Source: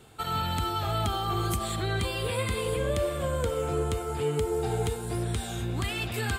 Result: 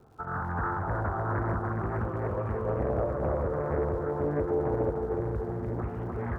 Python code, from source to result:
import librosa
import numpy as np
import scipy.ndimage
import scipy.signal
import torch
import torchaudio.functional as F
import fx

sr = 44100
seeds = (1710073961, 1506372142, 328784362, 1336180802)

y = scipy.signal.sosfilt(scipy.signal.butter(6, 1400.0, 'lowpass', fs=sr, output='sos'), x)
y = fx.dmg_crackle(y, sr, seeds[0], per_s=210.0, level_db=-52.0)
y = fx.echo_feedback(y, sr, ms=300, feedback_pct=56, wet_db=-4.0)
y = fx.doppler_dist(y, sr, depth_ms=0.73)
y = F.gain(torch.from_numpy(y), -2.5).numpy()